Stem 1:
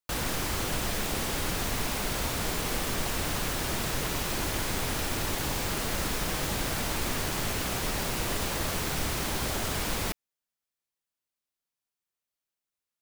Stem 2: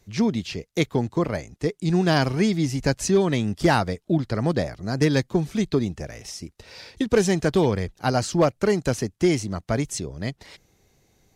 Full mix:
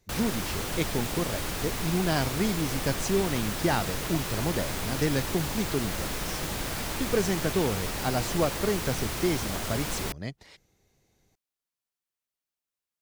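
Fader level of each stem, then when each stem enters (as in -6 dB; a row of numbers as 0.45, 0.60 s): -2.0, -7.0 dB; 0.00, 0.00 s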